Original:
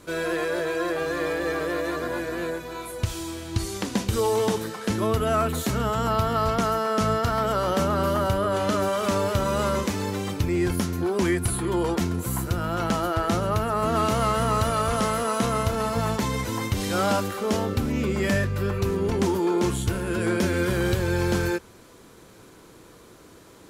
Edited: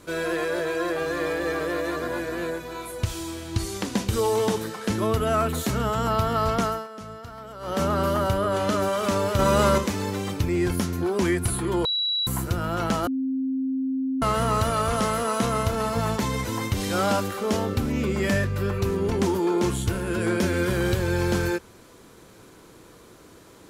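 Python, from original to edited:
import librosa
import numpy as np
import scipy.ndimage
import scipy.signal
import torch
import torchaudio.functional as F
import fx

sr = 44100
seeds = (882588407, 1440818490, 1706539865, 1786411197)

y = fx.edit(x, sr, fx.fade_down_up(start_s=6.63, length_s=1.21, db=-16.0, fade_s=0.25),
    fx.clip_gain(start_s=9.39, length_s=0.39, db=5.0),
    fx.bleep(start_s=11.85, length_s=0.42, hz=3910.0, db=-22.0),
    fx.bleep(start_s=13.07, length_s=1.15, hz=264.0, db=-23.0), tone=tone)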